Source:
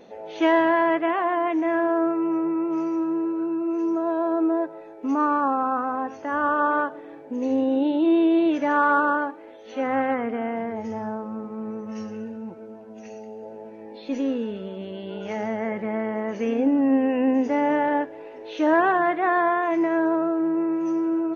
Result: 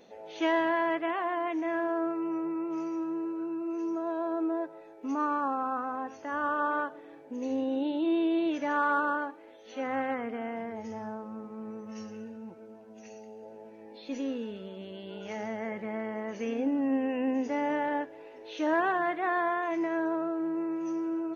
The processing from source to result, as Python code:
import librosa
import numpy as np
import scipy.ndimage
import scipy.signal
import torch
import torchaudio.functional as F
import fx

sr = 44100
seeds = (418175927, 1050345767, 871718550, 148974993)

y = fx.high_shelf(x, sr, hz=2800.0, db=8.0)
y = y * 10.0 ** (-8.5 / 20.0)